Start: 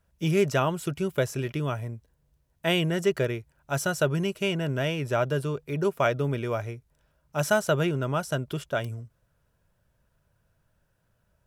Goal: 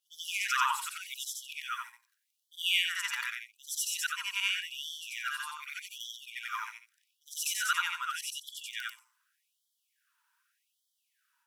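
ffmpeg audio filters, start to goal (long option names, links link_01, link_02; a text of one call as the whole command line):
ffmpeg -i in.wav -af "afftfilt=real='re':imag='-im':win_size=8192:overlap=0.75,afftfilt=real='re*gte(b*sr/1024,820*pow(3100/820,0.5+0.5*sin(2*PI*0.84*pts/sr)))':imag='im*gte(b*sr/1024,820*pow(3100/820,0.5+0.5*sin(2*PI*0.84*pts/sr)))':win_size=1024:overlap=0.75,volume=7.5dB" out.wav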